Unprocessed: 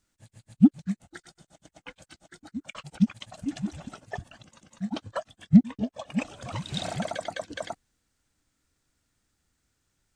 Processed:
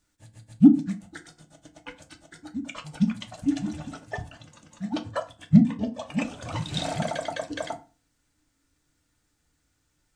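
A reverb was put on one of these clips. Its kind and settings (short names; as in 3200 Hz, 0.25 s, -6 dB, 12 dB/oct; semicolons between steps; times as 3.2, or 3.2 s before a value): FDN reverb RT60 0.34 s, low-frequency decay 1.25×, high-frequency decay 0.7×, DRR 4.5 dB; gain +1.5 dB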